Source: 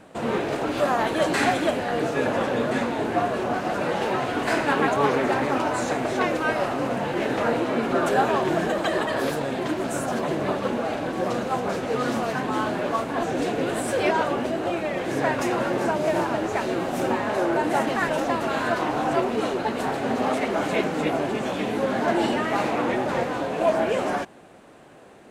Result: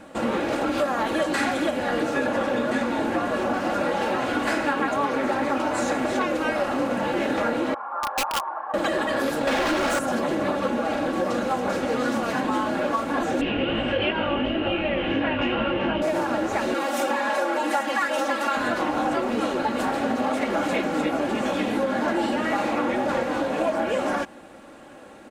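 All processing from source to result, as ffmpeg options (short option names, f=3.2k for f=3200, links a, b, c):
-filter_complex "[0:a]asettb=1/sr,asplit=3[a][b][c];[a]atrim=end=7.744[d];[b]atrim=start=7.74:end=8.74,asetpts=PTS-STARTPTS,afade=t=in:d=0.004:c=qsin,afade=t=out:st=0.996:d=0.004:c=qsin,asuperpass=centerf=1000:order=4:qfactor=2.5,aeval=exprs='(mod(11.9*val(0)+1,2)-1)/11.9':c=same[e];[c]atrim=start=8.736[f];[d][e]acrossfade=d=0.004:c1=hsin:c2=qsin[g];[g][f]acrossfade=d=0.004:c1=qsin:c2=hsin,asettb=1/sr,asplit=3[h][i][j];[h]atrim=end=9.474[k];[i]atrim=start=9.47:end=9.99,asetpts=PTS-STARTPTS,afade=t=in:d=0.004:c=qsin,afade=t=out:st=0.516:d=0.004:c=qsin,lowpass=10k,bandreject=f=50:t=h:w=6,bandreject=f=100:t=h:w=6,bandreject=f=150:t=h:w=6,bandreject=f=200:t=h:w=6,bandreject=f=250:t=h:w=6,bandreject=f=300:t=h:w=6,bandreject=f=350:t=h:w=6,bandreject=f=400:t=h:w=6,bandreject=f=450:t=h:w=6,asplit=2[l][m];[m]highpass=f=720:p=1,volume=33dB,asoftclip=type=tanh:threshold=-14dB[n];[l][n]amix=inputs=2:normalize=0,lowpass=f=3.4k:p=1,volume=-6dB[o];[j]atrim=start=9.986[p];[k][o]acrossfade=d=0.004:c1=hsin:c2=qsin[q];[q][p]acrossfade=d=0.004:c1=qsin:c2=hsin,asettb=1/sr,asplit=3[r][s][t];[r]atrim=end=13.414[u];[s]atrim=start=13.41:end=16.02,asetpts=PTS-STARTPTS,afade=t=in:d=0.004:c=qsin,afade=t=out:st=2.606:d=0.004:c=qsin,lowpass=f=2.9k:t=q:w=8.4,aemphasis=mode=reproduction:type=bsi,flanger=delay=17.5:depth=3.4:speed=2.7[v];[t]atrim=start=16.016[w];[u][v]acrossfade=d=0.004:c1=hsin:c2=qsin[x];[x][w]acrossfade=d=0.004:c1=qsin:c2=hsin,asettb=1/sr,asplit=3[y][z][aa];[y]atrim=end=16.744[ab];[z]atrim=start=16.74:end=18.57,asetpts=PTS-STARTPTS,afade=t=in:d=0.004:c=qsin,afade=t=out:st=1.826:d=0.004:c=qsin,highpass=f=750:p=1,aecho=1:1:3.6:0.77,atrim=end_sample=80703[ac];[aa]atrim=start=18.566[ad];[ab][ac]acrossfade=d=0.004:c1=hsin:c2=qsin[ae];[ae][ad]acrossfade=d=0.004:c1=qsin:c2=hsin,equalizer=f=1.4k:t=o:w=0.38:g=2.5,aecho=1:1:3.6:0.53,acompressor=threshold=-23dB:ratio=6,volume=2.5dB"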